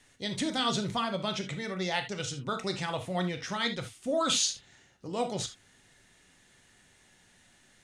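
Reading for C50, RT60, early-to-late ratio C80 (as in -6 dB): 11.0 dB, no single decay rate, 20.0 dB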